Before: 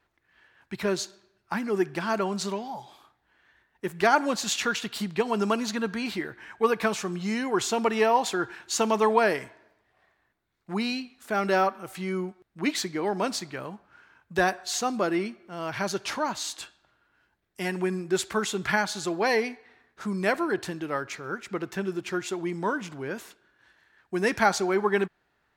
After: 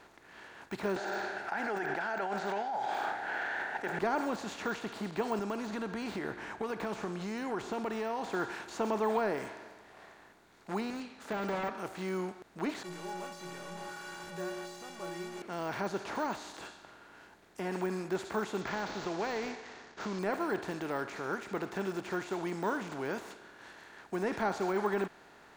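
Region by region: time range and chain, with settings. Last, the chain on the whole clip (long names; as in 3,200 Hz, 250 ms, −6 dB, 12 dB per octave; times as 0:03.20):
0:00.96–0:03.99: pair of resonant band-passes 1,100 Hz, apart 0.97 octaves + envelope flattener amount 100%
0:05.39–0:08.30: spectral tilt −2 dB per octave + downward compressor 5 to 1, threshold −30 dBFS
0:10.90–0:11.78: phase distortion by the signal itself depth 0.4 ms + low-pass filter 3,400 Hz 6 dB per octave + notch comb filter 360 Hz
0:12.83–0:15.42: linear delta modulator 64 kbit/s, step −25 dBFS + stiff-string resonator 170 Hz, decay 0.68 s, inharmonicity 0.03
0:18.61–0:20.19: variable-slope delta modulation 32 kbit/s + downward compressor, threshold −27 dBFS
whole clip: compressor on every frequency bin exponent 0.6; de-essing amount 100%; level −9 dB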